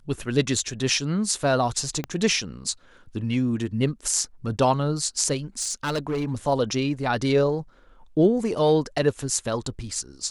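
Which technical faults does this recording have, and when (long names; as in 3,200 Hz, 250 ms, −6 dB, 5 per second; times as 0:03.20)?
0:02.04: click −15 dBFS
0:05.58–0:06.32: clipping −22 dBFS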